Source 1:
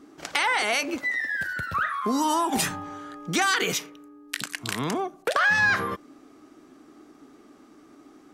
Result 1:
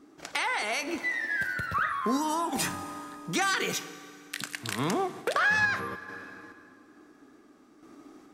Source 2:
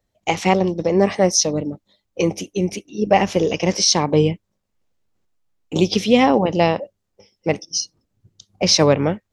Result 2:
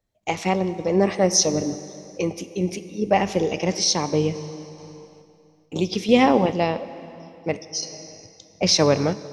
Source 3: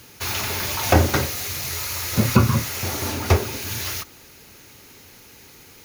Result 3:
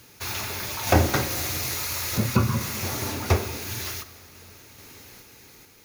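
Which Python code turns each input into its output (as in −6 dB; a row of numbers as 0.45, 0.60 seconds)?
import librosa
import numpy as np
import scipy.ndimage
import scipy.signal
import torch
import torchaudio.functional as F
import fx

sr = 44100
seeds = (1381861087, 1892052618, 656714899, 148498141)

y = fx.notch(x, sr, hz=3000.0, q=25.0)
y = fx.rev_plate(y, sr, seeds[0], rt60_s=3.0, hf_ratio=0.8, predelay_ms=0, drr_db=12.0)
y = fx.tremolo_random(y, sr, seeds[1], hz=2.3, depth_pct=55)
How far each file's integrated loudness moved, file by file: −4.0, −3.5, −3.5 LU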